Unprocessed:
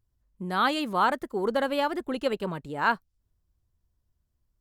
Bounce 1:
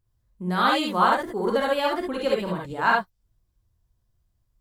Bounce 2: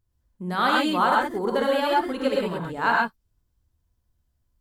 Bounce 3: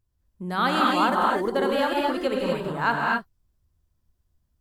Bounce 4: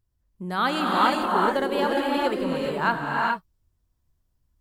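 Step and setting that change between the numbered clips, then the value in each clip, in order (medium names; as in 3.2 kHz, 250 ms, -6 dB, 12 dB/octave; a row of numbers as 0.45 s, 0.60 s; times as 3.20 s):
gated-style reverb, gate: 90 ms, 150 ms, 280 ms, 450 ms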